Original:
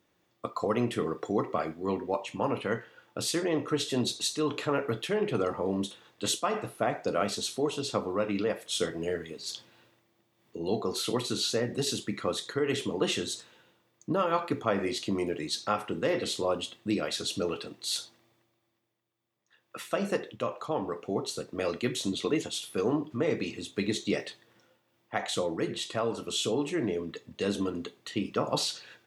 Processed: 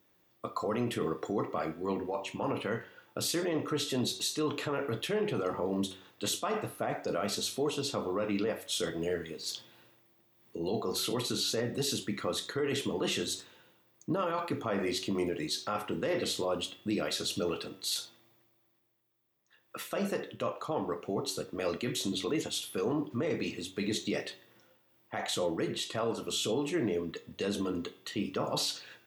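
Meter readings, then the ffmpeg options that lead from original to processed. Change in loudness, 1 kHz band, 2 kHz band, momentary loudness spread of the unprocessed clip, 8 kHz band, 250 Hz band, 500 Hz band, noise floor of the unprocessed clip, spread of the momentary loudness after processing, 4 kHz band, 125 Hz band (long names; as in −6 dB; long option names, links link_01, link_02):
−2.5 dB, −3.5 dB, −2.5 dB, 7 LU, −1.0 dB, −2.5 dB, −3.0 dB, −73 dBFS, 6 LU, −1.0 dB, −2.0 dB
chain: -af "alimiter=limit=-22.5dB:level=0:latency=1:release=21,bandreject=frequency=94.41:width_type=h:width=4,bandreject=frequency=188.82:width_type=h:width=4,bandreject=frequency=283.23:width_type=h:width=4,bandreject=frequency=377.64:width_type=h:width=4,bandreject=frequency=472.05:width_type=h:width=4,bandreject=frequency=566.46:width_type=h:width=4,bandreject=frequency=660.87:width_type=h:width=4,bandreject=frequency=755.28:width_type=h:width=4,bandreject=frequency=849.69:width_type=h:width=4,bandreject=frequency=944.1:width_type=h:width=4,bandreject=frequency=1038.51:width_type=h:width=4,bandreject=frequency=1132.92:width_type=h:width=4,bandreject=frequency=1227.33:width_type=h:width=4,bandreject=frequency=1321.74:width_type=h:width=4,bandreject=frequency=1416.15:width_type=h:width=4,bandreject=frequency=1510.56:width_type=h:width=4,bandreject=frequency=1604.97:width_type=h:width=4,bandreject=frequency=1699.38:width_type=h:width=4,bandreject=frequency=1793.79:width_type=h:width=4,bandreject=frequency=1888.2:width_type=h:width=4,bandreject=frequency=1982.61:width_type=h:width=4,bandreject=frequency=2077.02:width_type=h:width=4,bandreject=frequency=2171.43:width_type=h:width=4,bandreject=frequency=2265.84:width_type=h:width=4,bandreject=frequency=2360.25:width_type=h:width=4,bandreject=frequency=2454.66:width_type=h:width=4,bandreject=frequency=2549.07:width_type=h:width=4,bandreject=frequency=2643.48:width_type=h:width=4,bandreject=frequency=2737.89:width_type=h:width=4,bandreject=frequency=2832.3:width_type=h:width=4,bandreject=frequency=2926.71:width_type=h:width=4,bandreject=frequency=3021.12:width_type=h:width=4,bandreject=frequency=3115.53:width_type=h:width=4,bandreject=frequency=3209.94:width_type=h:width=4,bandreject=frequency=3304.35:width_type=h:width=4,bandreject=frequency=3398.76:width_type=h:width=4,bandreject=frequency=3493.17:width_type=h:width=4,bandreject=frequency=3587.58:width_type=h:width=4,bandreject=frequency=3681.99:width_type=h:width=4,aexciter=amount=2.9:drive=5.2:freq=12000"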